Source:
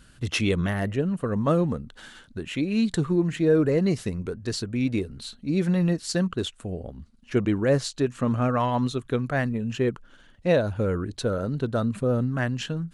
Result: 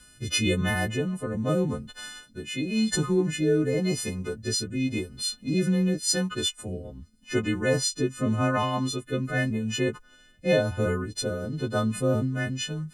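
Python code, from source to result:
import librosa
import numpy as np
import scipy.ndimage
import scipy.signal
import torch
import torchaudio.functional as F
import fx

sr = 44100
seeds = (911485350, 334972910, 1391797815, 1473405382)

y = fx.freq_snap(x, sr, grid_st=3)
y = fx.rotary(y, sr, hz=0.9)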